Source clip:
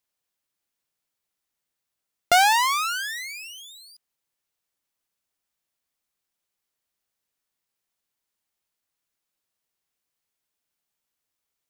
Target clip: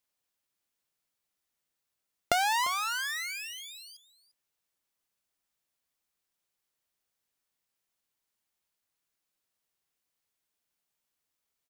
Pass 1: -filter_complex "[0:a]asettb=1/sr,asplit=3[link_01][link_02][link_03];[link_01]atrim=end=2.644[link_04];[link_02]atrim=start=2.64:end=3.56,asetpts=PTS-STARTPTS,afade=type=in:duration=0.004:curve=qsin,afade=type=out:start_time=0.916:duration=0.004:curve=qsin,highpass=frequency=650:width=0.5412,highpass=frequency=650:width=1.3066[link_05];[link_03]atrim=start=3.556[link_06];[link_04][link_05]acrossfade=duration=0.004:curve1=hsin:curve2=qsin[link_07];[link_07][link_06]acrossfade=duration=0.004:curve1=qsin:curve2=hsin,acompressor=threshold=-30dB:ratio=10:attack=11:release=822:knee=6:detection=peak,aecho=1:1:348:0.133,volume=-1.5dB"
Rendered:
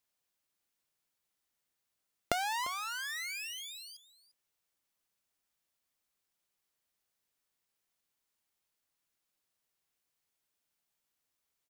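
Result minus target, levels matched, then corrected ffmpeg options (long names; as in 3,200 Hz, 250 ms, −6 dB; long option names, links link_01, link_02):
downward compressor: peak gain reduction +7 dB
-filter_complex "[0:a]asettb=1/sr,asplit=3[link_01][link_02][link_03];[link_01]atrim=end=2.644[link_04];[link_02]atrim=start=2.64:end=3.56,asetpts=PTS-STARTPTS,afade=type=in:duration=0.004:curve=qsin,afade=type=out:start_time=0.916:duration=0.004:curve=qsin,highpass=frequency=650:width=0.5412,highpass=frequency=650:width=1.3066[link_05];[link_03]atrim=start=3.556[link_06];[link_04][link_05]acrossfade=duration=0.004:curve1=hsin:curve2=qsin[link_07];[link_07][link_06]acrossfade=duration=0.004:curve1=qsin:curve2=hsin,acompressor=threshold=-22dB:ratio=10:attack=11:release=822:knee=6:detection=peak,aecho=1:1:348:0.133,volume=-1.5dB"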